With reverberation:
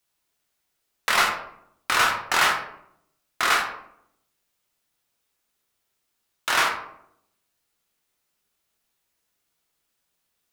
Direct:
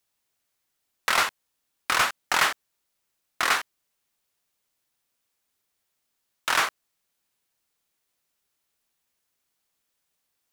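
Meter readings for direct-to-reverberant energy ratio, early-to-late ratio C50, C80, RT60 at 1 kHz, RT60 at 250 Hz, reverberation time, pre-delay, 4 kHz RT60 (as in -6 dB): 0.5 dB, 6.0 dB, 9.5 dB, 0.65 s, 0.95 s, 0.75 s, 9 ms, 0.40 s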